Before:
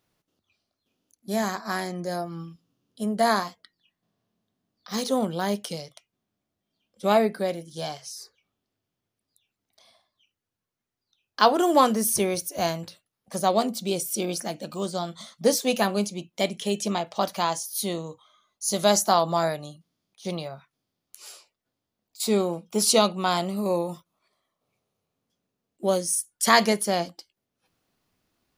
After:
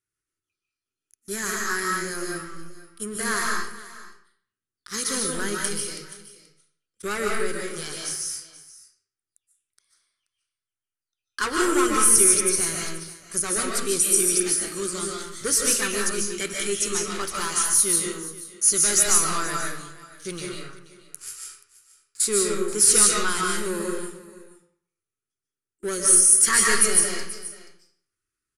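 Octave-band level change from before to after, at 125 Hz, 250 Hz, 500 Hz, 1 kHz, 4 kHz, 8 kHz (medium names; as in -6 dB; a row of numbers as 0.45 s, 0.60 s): -5.0 dB, -3.0 dB, -4.0 dB, -4.5 dB, +0.5 dB, +12.5 dB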